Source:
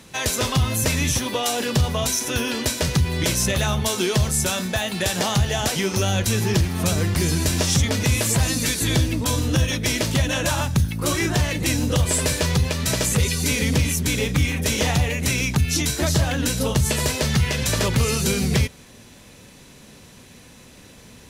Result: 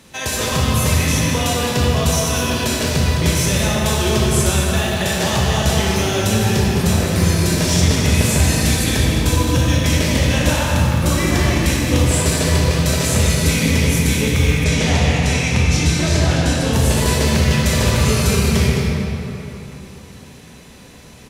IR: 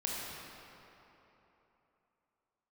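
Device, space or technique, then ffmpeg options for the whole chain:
cave: -filter_complex "[0:a]aecho=1:1:213:0.376[link_01];[1:a]atrim=start_sample=2205[link_02];[link_01][link_02]afir=irnorm=-1:irlink=0,asettb=1/sr,asplit=3[link_03][link_04][link_05];[link_03]atrim=end=14.644[link_06];[link_04]atrim=start=14.64:end=16.73,asetpts=PTS-STARTPTS,afade=type=in:duration=0.004:curve=qsin,afade=type=out:start_time=2.086:duration=0.004:curve=qsin,lowpass=8100[link_07];[link_05]atrim=start=16.726[link_08];[link_06][link_07]acrossfade=duration=0.004:curve1=hsin:curve2=qsin[link_09];[link_09][link_08]acrossfade=duration=0.004:curve1=qsin:curve2=hsin"

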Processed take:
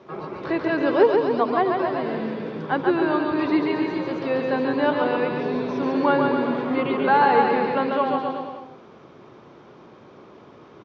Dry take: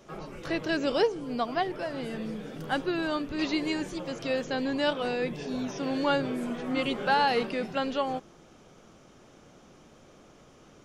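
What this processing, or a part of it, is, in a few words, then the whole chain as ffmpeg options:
guitar cabinet: -filter_complex "[0:a]highpass=110,equalizer=frequency=110:width_type=q:width=4:gain=5,equalizer=frequency=390:width_type=q:width=4:gain=7,equalizer=frequency=1000:width_type=q:width=4:gain=8,equalizer=frequency=3000:width_type=q:width=4:gain=-5,lowpass=frequency=4100:width=0.5412,lowpass=frequency=4100:width=1.3066,aecho=1:1:140|266|379.4|481.5|573.3:0.631|0.398|0.251|0.158|0.1,acrossover=split=2800[link_01][link_02];[link_02]acompressor=threshold=-50dB:ratio=4:attack=1:release=60[link_03];[link_01][link_03]amix=inputs=2:normalize=0,volume=4dB"

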